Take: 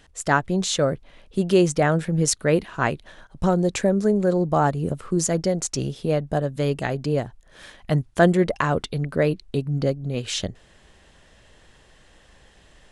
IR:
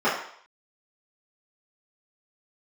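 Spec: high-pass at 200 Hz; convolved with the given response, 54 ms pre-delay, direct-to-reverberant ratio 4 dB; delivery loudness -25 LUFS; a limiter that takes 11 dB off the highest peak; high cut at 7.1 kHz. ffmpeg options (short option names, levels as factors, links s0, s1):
-filter_complex "[0:a]highpass=200,lowpass=7100,alimiter=limit=0.188:level=0:latency=1,asplit=2[s0][s1];[1:a]atrim=start_sample=2205,adelay=54[s2];[s1][s2]afir=irnorm=-1:irlink=0,volume=0.0794[s3];[s0][s3]amix=inputs=2:normalize=0,volume=1.12"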